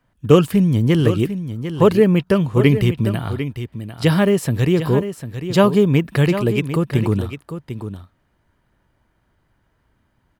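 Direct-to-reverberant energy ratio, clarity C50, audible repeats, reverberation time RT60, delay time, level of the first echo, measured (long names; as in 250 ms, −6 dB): no reverb audible, no reverb audible, 1, no reverb audible, 749 ms, −10.5 dB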